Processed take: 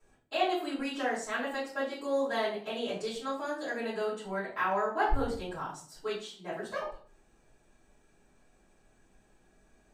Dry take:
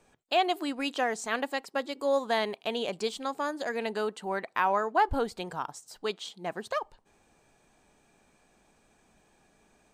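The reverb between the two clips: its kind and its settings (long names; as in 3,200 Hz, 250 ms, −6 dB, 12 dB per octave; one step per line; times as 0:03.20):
rectangular room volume 41 cubic metres, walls mixed, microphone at 3 metres
level −16.5 dB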